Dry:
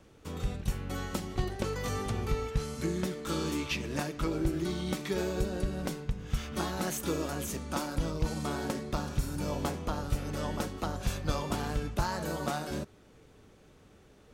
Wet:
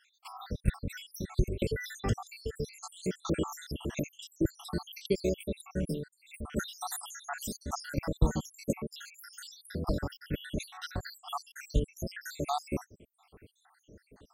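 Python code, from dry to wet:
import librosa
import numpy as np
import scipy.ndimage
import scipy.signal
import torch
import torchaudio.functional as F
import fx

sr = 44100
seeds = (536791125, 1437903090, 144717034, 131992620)

y = fx.spec_dropout(x, sr, seeds[0], share_pct=82)
y = y * librosa.db_to_amplitude(5.5)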